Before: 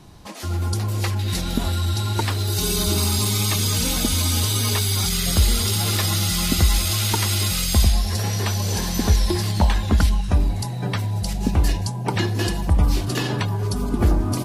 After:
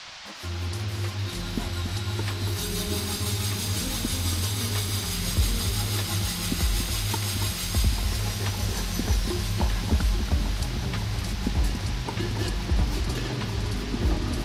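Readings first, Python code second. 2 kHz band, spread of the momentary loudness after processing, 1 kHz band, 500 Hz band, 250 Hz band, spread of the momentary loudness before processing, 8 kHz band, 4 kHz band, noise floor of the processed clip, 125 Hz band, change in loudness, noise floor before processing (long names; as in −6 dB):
−4.5 dB, 5 LU, −7.0 dB, −6.5 dB, −6.0 dB, 6 LU, −7.5 dB, −6.0 dB, −33 dBFS, −6.5 dB, −6.5 dB, −27 dBFS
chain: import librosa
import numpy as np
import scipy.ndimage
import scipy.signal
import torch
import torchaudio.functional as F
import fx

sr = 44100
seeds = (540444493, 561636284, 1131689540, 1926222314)

p1 = np.sign(x) * np.maximum(np.abs(x) - 10.0 ** (-49.0 / 20.0), 0.0)
p2 = fx.rotary(p1, sr, hz=6.0)
p3 = fx.dmg_noise_band(p2, sr, seeds[0], low_hz=630.0, high_hz=5400.0, level_db=-36.0)
p4 = p3 + fx.echo_alternate(p3, sr, ms=281, hz=2000.0, feedback_pct=87, wet_db=-7.5, dry=0)
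y = F.gain(torch.from_numpy(p4), -6.0).numpy()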